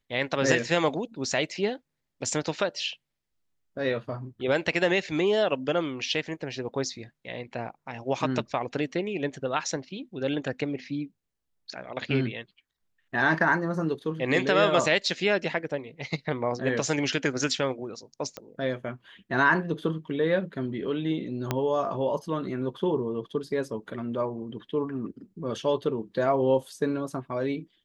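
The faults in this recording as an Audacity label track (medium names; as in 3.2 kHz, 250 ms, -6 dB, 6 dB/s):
18.370000	18.370000	pop -20 dBFS
21.510000	21.510000	pop -11 dBFS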